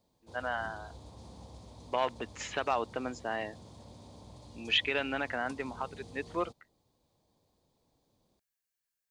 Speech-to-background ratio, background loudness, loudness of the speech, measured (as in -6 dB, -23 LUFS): 17.5 dB, -52.0 LUFS, -34.5 LUFS